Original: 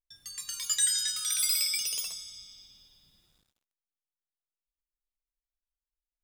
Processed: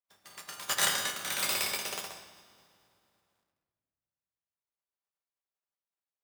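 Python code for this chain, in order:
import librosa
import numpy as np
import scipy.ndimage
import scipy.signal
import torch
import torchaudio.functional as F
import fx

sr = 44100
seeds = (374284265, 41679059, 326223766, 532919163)

y = fx.spec_flatten(x, sr, power=0.38)
y = scipy.signal.sosfilt(scipy.signal.butter(2, 62.0, 'highpass', fs=sr, output='sos'), y)
y = fx.peak_eq(y, sr, hz=810.0, db=13.5, octaves=2.9)
y = fx.room_shoebox(y, sr, seeds[0], volume_m3=2400.0, walls='mixed', distance_m=1.2)
y = fx.upward_expand(y, sr, threshold_db=-43.0, expansion=1.5)
y = y * 10.0 ** (-4.0 / 20.0)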